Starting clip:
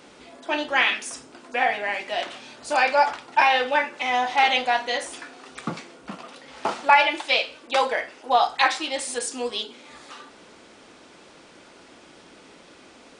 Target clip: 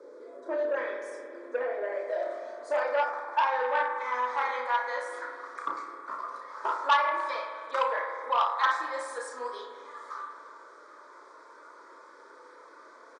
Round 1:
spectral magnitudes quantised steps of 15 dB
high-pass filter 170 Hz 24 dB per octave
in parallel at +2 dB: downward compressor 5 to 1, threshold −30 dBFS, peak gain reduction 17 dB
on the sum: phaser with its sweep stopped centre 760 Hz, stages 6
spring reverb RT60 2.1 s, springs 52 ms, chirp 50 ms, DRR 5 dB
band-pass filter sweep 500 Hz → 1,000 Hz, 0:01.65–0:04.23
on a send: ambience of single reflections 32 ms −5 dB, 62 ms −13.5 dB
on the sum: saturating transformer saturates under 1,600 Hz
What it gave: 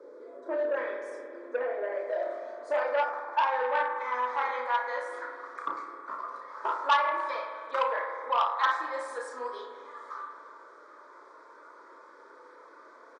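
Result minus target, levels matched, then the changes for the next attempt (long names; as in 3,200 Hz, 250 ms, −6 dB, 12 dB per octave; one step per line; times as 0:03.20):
8,000 Hz band −4.5 dB
add after high-pass filter: high-shelf EQ 3,800 Hz +8.5 dB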